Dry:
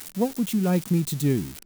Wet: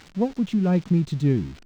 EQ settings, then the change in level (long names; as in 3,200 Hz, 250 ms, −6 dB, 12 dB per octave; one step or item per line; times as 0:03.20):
high-frequency loss of the air 170 metres
low-shelf EQ 120 Hz +7.5 dB
0.0 dB